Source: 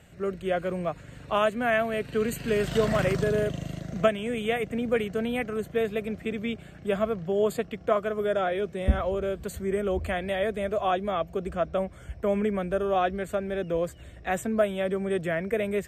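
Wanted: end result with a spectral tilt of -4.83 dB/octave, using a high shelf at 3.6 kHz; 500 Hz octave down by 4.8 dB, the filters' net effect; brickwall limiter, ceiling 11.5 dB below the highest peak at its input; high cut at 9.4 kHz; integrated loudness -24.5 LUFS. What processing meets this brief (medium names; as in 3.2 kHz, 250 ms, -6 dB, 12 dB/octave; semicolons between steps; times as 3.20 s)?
low-pass 9.4 kHz; peaking EQ 500 Hz -6.5 dB; treble shelf 3.6 kHz +8.5 dB; trim +7.5 dB; peak limiter -13 dBFS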